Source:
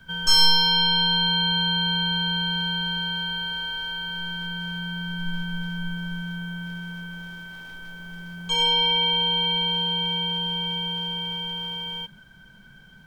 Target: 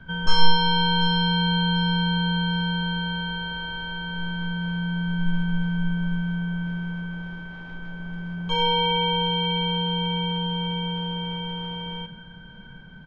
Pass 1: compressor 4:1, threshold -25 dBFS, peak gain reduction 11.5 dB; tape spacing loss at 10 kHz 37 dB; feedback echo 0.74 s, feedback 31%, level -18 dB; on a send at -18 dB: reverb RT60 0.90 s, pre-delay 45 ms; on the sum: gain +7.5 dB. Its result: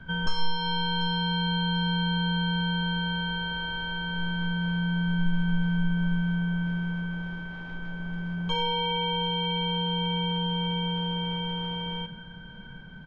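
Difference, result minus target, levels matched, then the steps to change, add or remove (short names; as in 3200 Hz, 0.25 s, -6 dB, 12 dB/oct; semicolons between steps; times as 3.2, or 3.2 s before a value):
compressor: peak gain reduction +11.5 dB
remove: compressor 4:1, threshold -25 dBFS, peak gain reduction 11.5 dB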